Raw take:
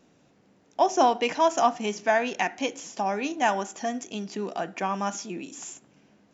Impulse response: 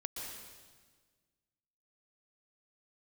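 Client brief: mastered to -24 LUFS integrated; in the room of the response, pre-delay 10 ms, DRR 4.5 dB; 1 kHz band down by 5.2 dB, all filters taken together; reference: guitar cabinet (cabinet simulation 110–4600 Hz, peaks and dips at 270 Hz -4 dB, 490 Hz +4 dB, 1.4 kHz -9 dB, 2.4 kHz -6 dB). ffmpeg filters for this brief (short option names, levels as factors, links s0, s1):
-filter_complex "[0:a]equalizer=f=1000:t=o:g=-7,asplit=2[s0][s1];[1:a]atrim=start_sample=2205,adelay=10[s2];[s1][s2]afir=irnorm=-1:irlink=0,volume=0.596[s3];[s0][s3]amix=inputs=2:normalize=0,highpass=110,equalizer=f=270:t=q:w=4:g=-4,equalizer=f=490:t=q:w=4:g=4,equalizer=f=1400:t=q:w=4:g=-9,equalizer=f=2400:t=q:w=4:g=-6,lowpass=f=4600:w=0.5412,lowpass=f=4600:w=1.3066,volume=1.68"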